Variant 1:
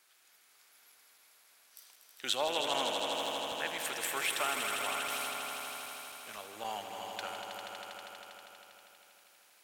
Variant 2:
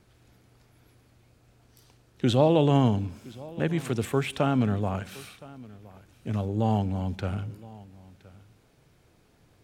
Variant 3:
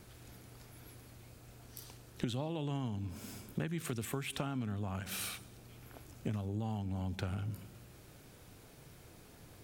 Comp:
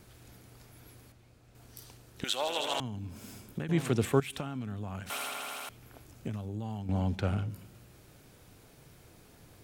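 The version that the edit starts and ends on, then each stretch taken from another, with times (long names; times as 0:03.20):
3
0:01.12–0:01.55: punch in from 2
0:02.24–0:02.80: punch in from 1
0:03.69–0:04.20: punch in from 2
0:05.10–0:05.69: punch in from 1
0:06.89–0:07.49: punch in from 2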